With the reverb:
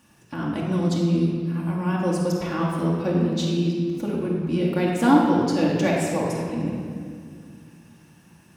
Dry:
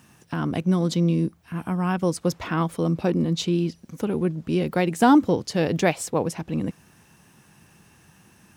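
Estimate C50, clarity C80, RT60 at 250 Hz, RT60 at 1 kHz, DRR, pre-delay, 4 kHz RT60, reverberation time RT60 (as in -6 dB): 0.0 dB, 2.0 dB, 3.0 s, 1.9 s, -4.0 dB, 4 ms, 1.5 s, 2.1 s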